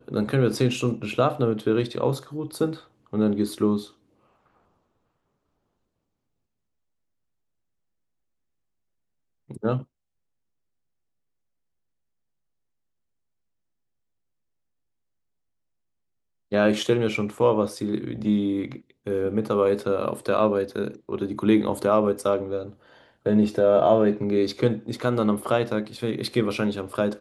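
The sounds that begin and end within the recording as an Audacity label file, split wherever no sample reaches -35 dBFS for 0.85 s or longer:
9.500000	9.820000	sound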